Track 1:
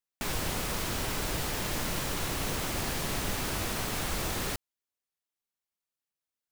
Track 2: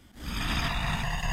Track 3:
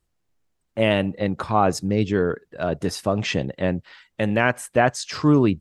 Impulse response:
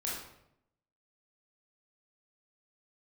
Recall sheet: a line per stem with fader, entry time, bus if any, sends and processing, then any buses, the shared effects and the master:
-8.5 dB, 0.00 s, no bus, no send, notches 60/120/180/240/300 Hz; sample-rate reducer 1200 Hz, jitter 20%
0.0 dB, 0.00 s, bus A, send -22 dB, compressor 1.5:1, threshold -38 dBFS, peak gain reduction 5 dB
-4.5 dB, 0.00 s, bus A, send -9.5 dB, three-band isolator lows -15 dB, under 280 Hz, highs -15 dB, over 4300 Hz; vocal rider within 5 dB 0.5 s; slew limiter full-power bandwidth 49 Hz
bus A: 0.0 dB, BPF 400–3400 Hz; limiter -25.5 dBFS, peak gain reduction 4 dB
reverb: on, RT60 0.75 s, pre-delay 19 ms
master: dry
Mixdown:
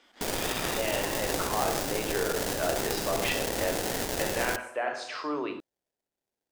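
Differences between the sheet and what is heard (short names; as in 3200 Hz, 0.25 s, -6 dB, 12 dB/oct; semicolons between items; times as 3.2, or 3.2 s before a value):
stem 1 -8.5 dB -> +3.0 dB; stem 3: missing slew limiter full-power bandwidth 49 Hz; master: extra tone controls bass -9 dB, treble +10 dB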